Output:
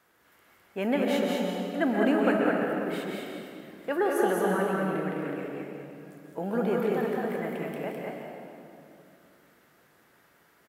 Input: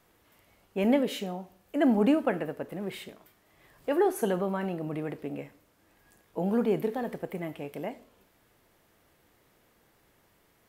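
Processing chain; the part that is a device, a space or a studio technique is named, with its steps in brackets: stadium PA (HPF 200 Hz 6 dB/oct; bell 1500 Hz +7.5 dB 0.71 oct; loudspeakers at several distances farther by 60 m -9 dB, 71 m -4 dB; reverb RT60 2.6 s, pre-delay 0.119 s, DRR 1.5 dB); gain -2 dB

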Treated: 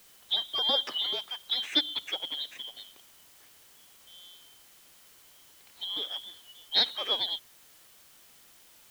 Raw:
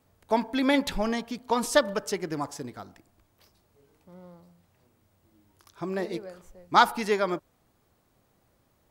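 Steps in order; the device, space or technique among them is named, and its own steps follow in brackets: split-band scrambled radio (four-band scrambler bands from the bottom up 2413; BPF 370–2900 Hz; white noise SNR 22 dB)

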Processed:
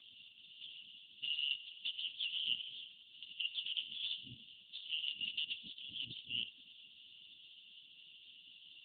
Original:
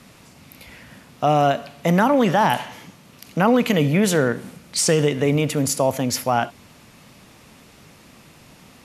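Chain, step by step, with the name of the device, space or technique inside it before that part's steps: FFT band-reject 120–2700 Hz; voicemail (BPF 400–3000 Hz; compressor 6:1, threshold -41 dBFS, peak gain reduction 10.5 dB; gain +9.5 dB; AMR-NB 4.75 kbps 8000 Hz)

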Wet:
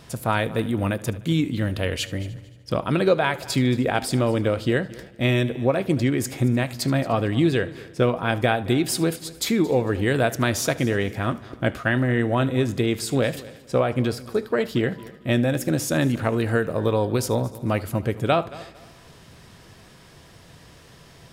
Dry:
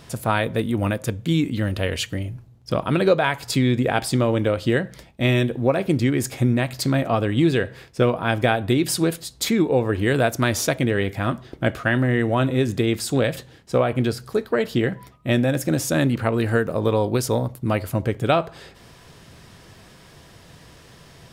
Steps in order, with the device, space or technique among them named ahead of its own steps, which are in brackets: multi-head tape echo (multi-head echo 75 ms, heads first and third, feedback 45%, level -20 dB; wow and flutter 9.3 cents); gain -1.5 dB

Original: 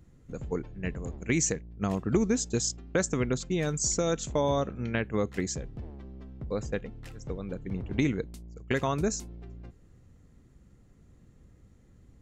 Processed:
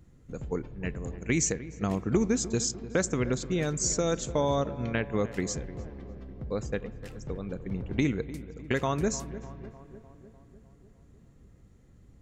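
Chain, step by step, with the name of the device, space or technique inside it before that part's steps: dub delay into a spring reverb (darkening echo 0.301 s, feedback 65%, low-pass 1600 Hz, level -15 dB; spring tank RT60 3.5 s, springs 41/50 ms, chirp 25 ms, DRR 19 dB)

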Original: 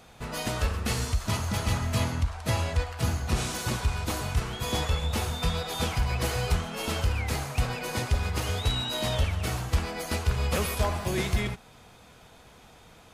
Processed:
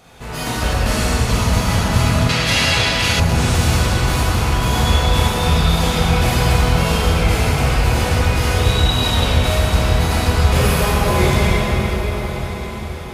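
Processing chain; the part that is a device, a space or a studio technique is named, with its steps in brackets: cathedral (reverb RT60 4.9 s, pre-delay 19 ms, DRR -9 dB); 2.29–3.2 weighting filter D; diffused feedback echo 1.191 s, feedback 43%, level -14 dB; gain +3.5 dB

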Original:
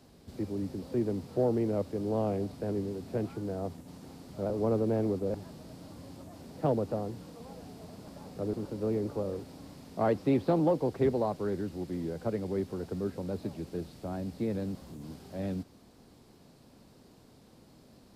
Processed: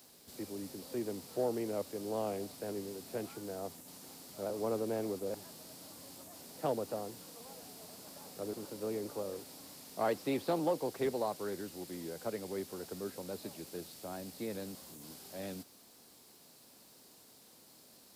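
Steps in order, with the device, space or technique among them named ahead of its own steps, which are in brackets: turntable without a phono preamp (RIAA curve recording; white noise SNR 36 dB); gain -2.5 dB

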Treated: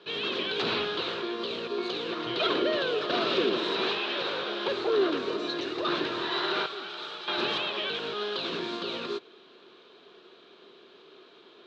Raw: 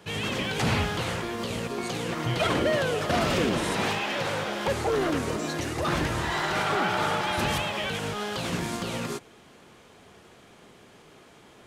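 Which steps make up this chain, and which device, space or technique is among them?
phone earpiece (speaker cabinet 380–4100 Hz, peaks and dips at 380 Hz +9 dB, 560 Hz -4 dB, 810 Hz -9 dB, 2000 Hz -9 dB, 3900 Hz +10 dB); 6.66–7.28 pre-emphasis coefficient 0.8

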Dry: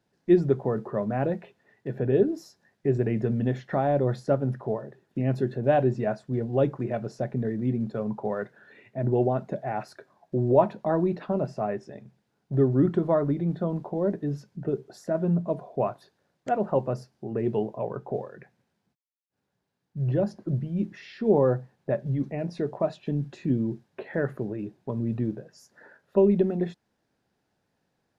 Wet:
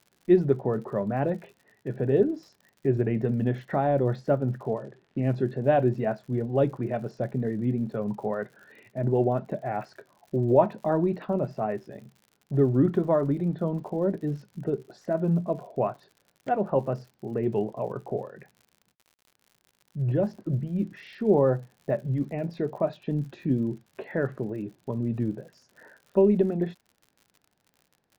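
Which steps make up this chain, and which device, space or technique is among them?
lo-fi chain (LPF 4100 Hz 12 dB/oct; wow and flutter; crackle 81/s -44 dBFS); 4.67–5.63 low-pass opened by the level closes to 2800 Hz, open at -21.5 dBFS

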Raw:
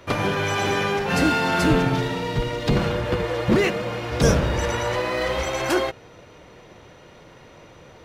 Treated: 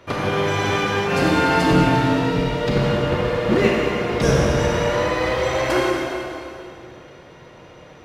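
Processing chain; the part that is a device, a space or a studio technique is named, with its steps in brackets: low shelf 67 Hz -5.5 dB; swimming-pool hall (reverb RT60 2.6 s, pre-delay 29 ms, DRR -2.5 dB; high shelf 5200 Hz -5.5 dB); gain -1 dB

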